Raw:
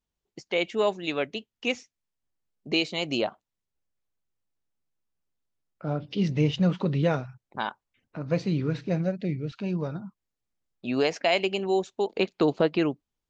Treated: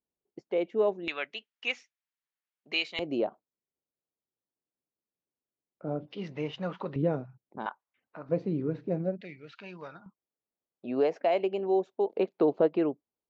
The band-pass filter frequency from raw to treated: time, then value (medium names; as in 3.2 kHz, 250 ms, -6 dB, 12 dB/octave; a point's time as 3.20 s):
band-pass filter, Q 1
400 Hz
from 1.08 s 1.9 kHz
from 2.99 s 400 Hz
from 6.08 s 1 kHz
from 6.96 s 320 Hz
from 7.66 s 1 kHz
from 8.29 s 390 Hz
from 9.21 s 1.8 kHz
from 10.06 s 500 Hz